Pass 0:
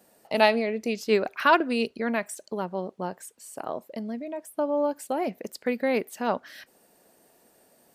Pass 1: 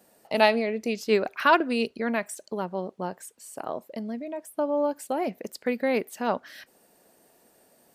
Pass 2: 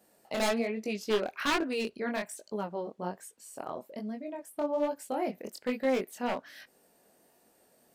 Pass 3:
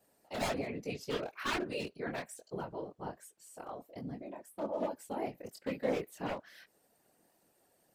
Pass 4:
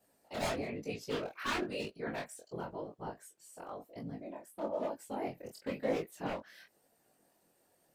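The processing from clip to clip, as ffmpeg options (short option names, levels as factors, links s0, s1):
-af anull
-af "aeval=exprs='0.133*(abs(mod(val(0)/0.133+3,4)-2)-1)':c=same,flanger=delay=18.5:depth=6:speed=1.2,volume=0.841"
-af "afftfilt=real='hypot(re,im)*cos(2*PI*random(0))':imag='hypot(re,im)*sin(2*PI*random(1))':win_size=512:overlap=0.75"
-af "flanger=delay=17.5:depth=6.6:speed=1,volume=1.33"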